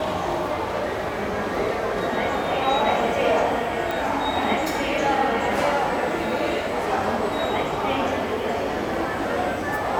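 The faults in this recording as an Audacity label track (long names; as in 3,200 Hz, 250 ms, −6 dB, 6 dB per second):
3.910000	3.910000	click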